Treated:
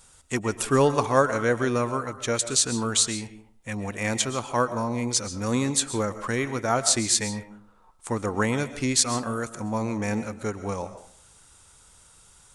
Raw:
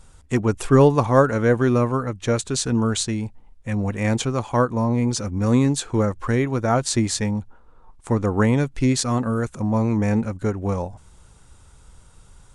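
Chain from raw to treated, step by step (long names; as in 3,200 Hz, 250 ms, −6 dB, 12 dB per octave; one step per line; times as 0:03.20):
spectral tilt +2.5 dB per octave
on a send: convolution reverb RT60 0.45 s, pre-delay 90 ms, DRR 12 dB
on the sum: level −2.5 dB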